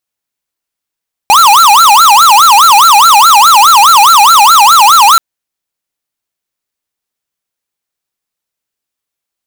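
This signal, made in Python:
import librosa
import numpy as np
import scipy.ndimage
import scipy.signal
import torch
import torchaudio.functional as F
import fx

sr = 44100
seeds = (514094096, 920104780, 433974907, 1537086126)

y = fx.siren(sr, length_s=3.88, kind='wail', low_hz=802.0, high_hz=1370.0, per_s=4.8, wave='square', level_db=-3.5)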